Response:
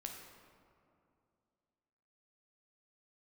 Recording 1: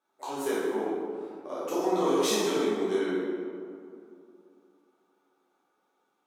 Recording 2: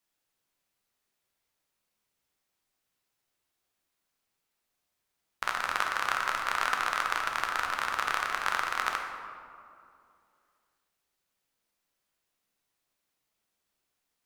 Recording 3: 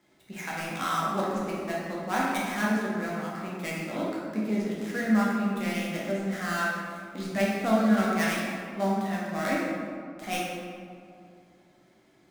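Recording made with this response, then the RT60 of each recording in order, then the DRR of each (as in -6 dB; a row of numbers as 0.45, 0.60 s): 2; 2.5, 2.5, 2.5 s; -10.5, 1.5, -6.0 dB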